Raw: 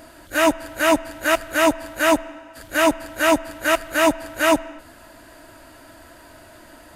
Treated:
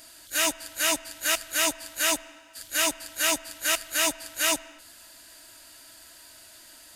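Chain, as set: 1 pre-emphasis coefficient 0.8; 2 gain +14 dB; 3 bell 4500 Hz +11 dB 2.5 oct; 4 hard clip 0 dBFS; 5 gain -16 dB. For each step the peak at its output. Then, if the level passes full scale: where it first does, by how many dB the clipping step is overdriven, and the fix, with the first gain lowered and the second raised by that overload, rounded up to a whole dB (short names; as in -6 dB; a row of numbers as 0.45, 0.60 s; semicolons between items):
-13.5, +0.5, +6.0, 0.0, -16.0 dBFS; step 2, 6.0 dB; step 2 +8 dB, step 5 -10 dB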